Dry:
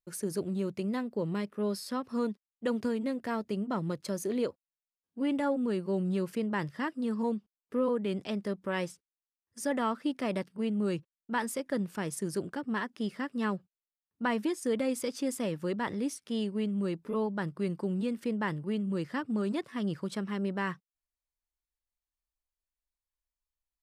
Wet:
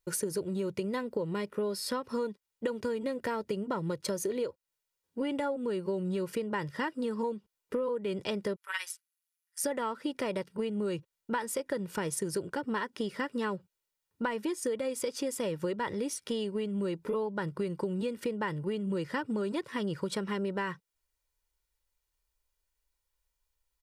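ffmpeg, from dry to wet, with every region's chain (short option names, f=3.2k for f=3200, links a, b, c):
-filter_complex "[0:a]asettb=1/sr,asplit=3[a][b][c];[a]atrim=end=8.564[d];[b]atrim=start=8.56:end=9.64,asetpts=PTS-STARTPTS,afade=t=in:d=0.004:c=qsin,afade=t=out:st=1.076:d=0.004:c=qsin,highpass=f=1.3k:w=0.5412,highpass=f=1.3k:w=1.3066,equalizer=f=11k:t=o:w=0.38:g=10,tremolo=f=170:d=0.919[e];[c]atrim=start=9.636[f];[d][e]acrossfade=d=0.004:c1=hsin:c2=qsin[g];[g][f]acrossfade=d=0.004:c1=qsin:c2=hsin,aecho=1:1:2.1:0.49,acompressor=threshold=-38dB:ratio=10,volume=8.5dB"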